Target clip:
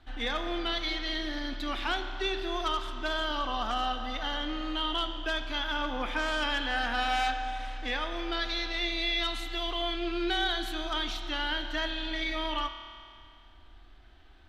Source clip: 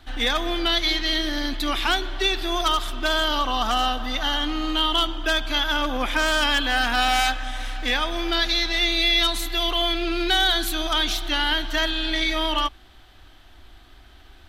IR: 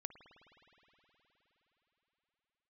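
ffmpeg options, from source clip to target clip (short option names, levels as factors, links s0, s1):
-filter_complex "[0:a]aemphasis=mode=reproduction:type=50fm[s0];[1:a]atrim=start_sample=2205,asetrate=88200,aresample=44100[s1];[s0][s1]afir=irnorm=-1:irlink=0,volume=1.33"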